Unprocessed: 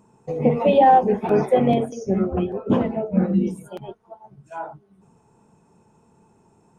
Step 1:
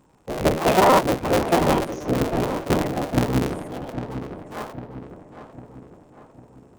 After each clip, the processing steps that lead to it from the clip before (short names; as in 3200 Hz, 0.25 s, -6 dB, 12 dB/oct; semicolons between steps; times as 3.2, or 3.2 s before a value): cycle switcher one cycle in 3, inverted; on a send: darkening echo 0.802 s, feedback 52%, low-pass 2200 Hz, level -10 dB; on the sum: gain -2 dB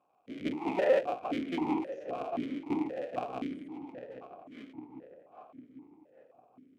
vowel sequencer 3.8 Hz; gain -1.5 dB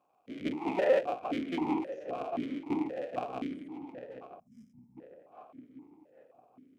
spectral gain 4.4–4.98, 240–4900 Hz -27 dB